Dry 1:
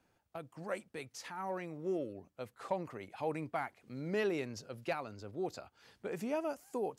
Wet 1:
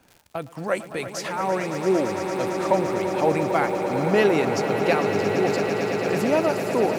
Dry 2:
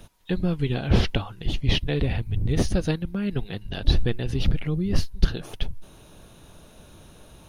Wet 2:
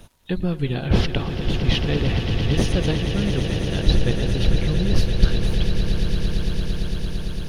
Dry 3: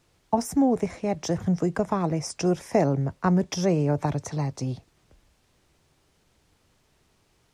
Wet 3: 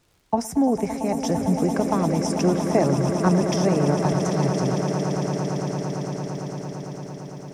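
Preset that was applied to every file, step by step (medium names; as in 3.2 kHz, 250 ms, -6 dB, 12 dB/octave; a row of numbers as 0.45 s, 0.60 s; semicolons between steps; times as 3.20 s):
crackle 110 per s -51 dBFS; echo with a slow build-up 113 ms, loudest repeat 8, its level -11 dB; normalise loudness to -23 LUFS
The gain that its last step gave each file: +14.5 dB, +1.0 dB, +1.0 dB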